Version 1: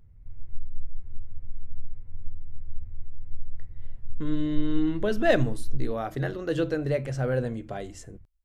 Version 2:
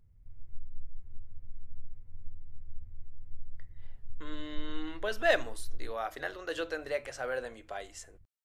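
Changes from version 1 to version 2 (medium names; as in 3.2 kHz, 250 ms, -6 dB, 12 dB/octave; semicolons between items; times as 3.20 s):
speech: add high-pass 740 Hz 12 dB/octave; background -8.5 dB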